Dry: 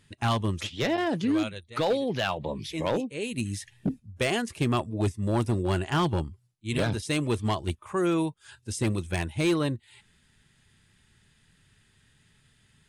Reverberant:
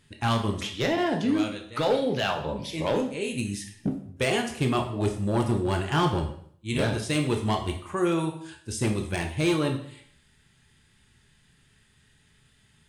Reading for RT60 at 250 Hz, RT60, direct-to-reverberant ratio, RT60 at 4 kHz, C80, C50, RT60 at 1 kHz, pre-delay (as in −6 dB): 0.60 s, 0.60 s, 3.0 dB, 0.55 s, 12.0 dB, 8.0 dB, 0.55 s, 7 ms